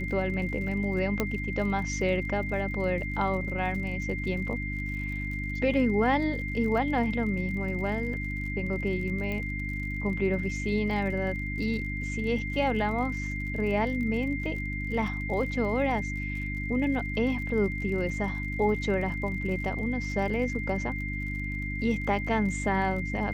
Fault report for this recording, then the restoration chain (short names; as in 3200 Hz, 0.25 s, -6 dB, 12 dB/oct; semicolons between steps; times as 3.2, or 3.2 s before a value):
crackle 49/s -38 dBFS
hum 50 Hz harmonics 6 -34 dBFS
tone 2100 Hz -35 dBFS
1.2 pop -12 dBFS
9.32 pop -21 dBFS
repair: de-click; notch 2100 Hz, Q 30; de-hum 50 Hz, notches 6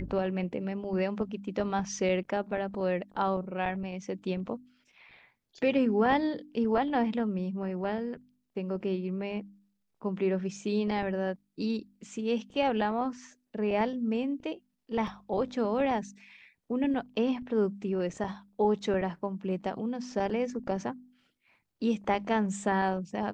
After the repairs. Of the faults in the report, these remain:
9.32 pop